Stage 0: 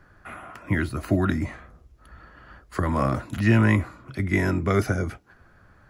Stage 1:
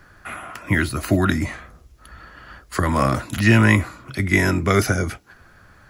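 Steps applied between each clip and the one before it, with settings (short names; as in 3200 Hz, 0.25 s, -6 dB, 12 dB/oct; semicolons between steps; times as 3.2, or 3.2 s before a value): high shelf 2100 Hz +10 dB; gain +3.5 dB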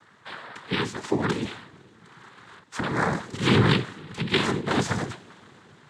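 two-slope reverb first 0.5 s, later 4.7 s, from -18 dB, DRR 12 dB; noise vocoder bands 6; gain -5.5 dB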